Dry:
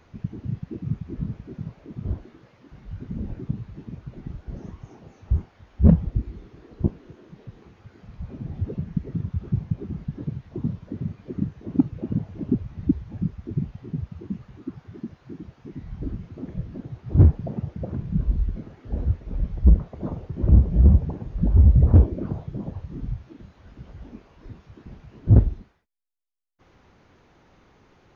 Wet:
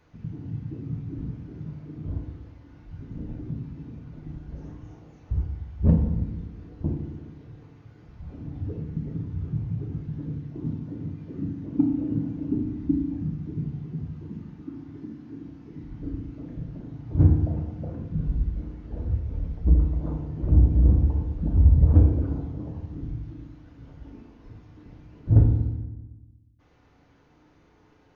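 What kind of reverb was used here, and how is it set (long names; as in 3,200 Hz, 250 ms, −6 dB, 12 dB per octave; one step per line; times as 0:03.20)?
feedback delay network reverb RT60 1.1 s, low-frequency decay 1.35×, high-frequency decay 0.6×, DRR 0 dB
level −7 dB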